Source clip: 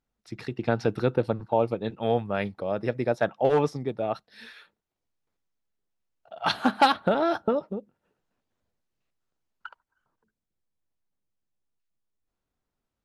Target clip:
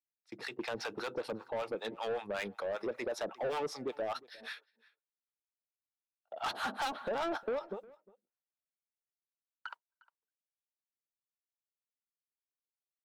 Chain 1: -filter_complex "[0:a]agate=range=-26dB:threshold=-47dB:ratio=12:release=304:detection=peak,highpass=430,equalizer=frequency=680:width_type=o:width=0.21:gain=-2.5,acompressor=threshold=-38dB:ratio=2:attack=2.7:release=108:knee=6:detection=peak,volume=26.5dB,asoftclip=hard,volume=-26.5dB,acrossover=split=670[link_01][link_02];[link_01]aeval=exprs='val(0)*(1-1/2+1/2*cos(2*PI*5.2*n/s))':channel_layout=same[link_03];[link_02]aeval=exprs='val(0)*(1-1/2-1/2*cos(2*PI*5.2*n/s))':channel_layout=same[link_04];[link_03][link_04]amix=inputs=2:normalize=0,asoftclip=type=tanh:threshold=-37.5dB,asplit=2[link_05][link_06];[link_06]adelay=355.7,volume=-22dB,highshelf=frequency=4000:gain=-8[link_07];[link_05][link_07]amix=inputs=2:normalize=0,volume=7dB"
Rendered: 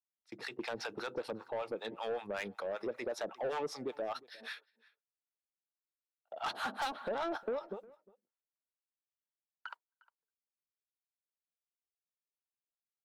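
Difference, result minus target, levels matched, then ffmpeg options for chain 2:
downward compressor: peak gain reduction +3.5 dB
-filter_complex "[0:a]agate=range=-26dB:threshold=-47dB:ratio=12:release=304:detection=peak,highpass=430,equalizer=frequency=680:width_type=o:width=0.21:gain=-2.5,acompressor=threshold=-31dB:ratio=2:attack=2.7:release=108:knee=6:detection=peak,volume=26.5dB,asoftclip=hard,volume=-26.5dB,acrossover=split=670[link_01][link_02];[link_01]aeval=exprs='val(0)*(1-1/2+1/2*cos(2*PI*5.2*n/s))':channel_layout=same[link_03];[link_02]aeval=exprs='val(0)*(1-1/2-1/2*cos(2*PI*5.2*n/s))':channel_layout=same[link_04];[link_03][link_04]amix=inputs=2:normalize=0,asoftclip=type=tanh:threshold=-37.5dB,asplit=2[link_05][link_06];[link_06]adelay=355.7,volume=-22dB,highshelf=frequency=4000:gain=-8[link_07];[link_05][link_07]amix=inputs=2:normalize=0,volume=7dB"

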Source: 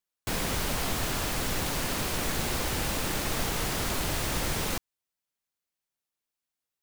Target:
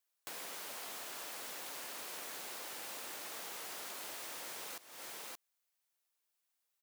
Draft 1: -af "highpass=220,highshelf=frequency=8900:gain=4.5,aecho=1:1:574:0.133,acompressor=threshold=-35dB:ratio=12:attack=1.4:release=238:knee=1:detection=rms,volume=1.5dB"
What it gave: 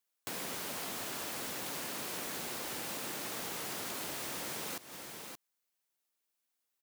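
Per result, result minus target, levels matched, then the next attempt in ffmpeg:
250 Hz band +8.0 dB; downward compressor: peak gain reduction −5 dB
-af "highpass=480,highshelf=frequency=8900:gain=4.5,aecho=1:1:574:0.133,acompressor=threshold=-35dB:ratio=12:attack=1.4:release=238:knee=1:detection=rms,volume=1.5dB"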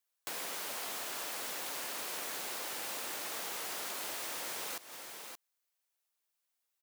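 downward compressor: peak gain reduction −5.5 dB
-af "highpass=480,highshelf=frequency=8900:gain=4.5,aecho=1:1:574:0.133,acompressor=threshold=-41dB:ratio=12:attack=1.4:release=238:knee=1:detection=rms,volume=1.5dB"

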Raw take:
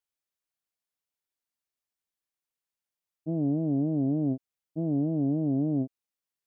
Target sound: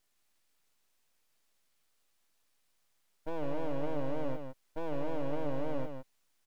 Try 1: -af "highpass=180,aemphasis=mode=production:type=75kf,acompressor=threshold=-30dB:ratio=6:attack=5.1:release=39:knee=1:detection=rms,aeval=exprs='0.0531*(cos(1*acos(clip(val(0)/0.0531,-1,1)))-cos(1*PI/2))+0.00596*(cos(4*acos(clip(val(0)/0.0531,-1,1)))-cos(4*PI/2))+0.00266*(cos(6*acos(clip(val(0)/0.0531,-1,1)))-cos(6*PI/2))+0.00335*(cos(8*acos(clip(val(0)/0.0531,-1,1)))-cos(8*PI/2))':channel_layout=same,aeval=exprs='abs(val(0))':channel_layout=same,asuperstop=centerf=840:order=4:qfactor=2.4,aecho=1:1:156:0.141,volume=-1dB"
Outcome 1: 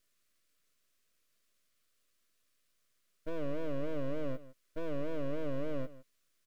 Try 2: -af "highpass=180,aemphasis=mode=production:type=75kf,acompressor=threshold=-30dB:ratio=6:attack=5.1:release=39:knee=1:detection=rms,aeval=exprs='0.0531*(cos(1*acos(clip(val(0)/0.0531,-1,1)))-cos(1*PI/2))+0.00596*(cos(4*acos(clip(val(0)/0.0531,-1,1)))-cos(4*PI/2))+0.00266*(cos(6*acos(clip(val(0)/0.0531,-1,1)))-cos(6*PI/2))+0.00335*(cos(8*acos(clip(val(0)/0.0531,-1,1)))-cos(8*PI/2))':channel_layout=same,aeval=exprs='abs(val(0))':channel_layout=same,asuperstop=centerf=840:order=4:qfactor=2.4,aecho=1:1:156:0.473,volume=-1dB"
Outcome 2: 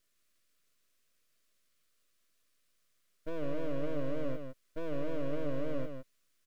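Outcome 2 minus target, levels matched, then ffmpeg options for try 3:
1,000 Hz band −6.5 dB
-af "highpass=180,aemphasis=mode=production:type=75kf,acompressor=threshold=-30dB:ratio=6:attack=5.1:release=39:knee=1:detection=rms,aeval=exprs='0.0531*(cos(1*acos(clip(val(0)/0.0531,-1,1)))-cos(1*PI/2))+0.00596*(cos(4*acos(clip(val(0)/0.0531,-1,1)))-cos(4*PI/2))+0.00266*(cos(6*acos(clip(val(0)/0.0531,-1,1)))-cos(6*PI/2))+0.00335*(cos(8*acos(clip(val(0)/0.0531,-1,1)))-cos(8*PI/2))':channel_layout=same,aeval=exprs='abs(val(0))':channel_layout=same,aecho=1:1:156:0.473,volume=-1dB"

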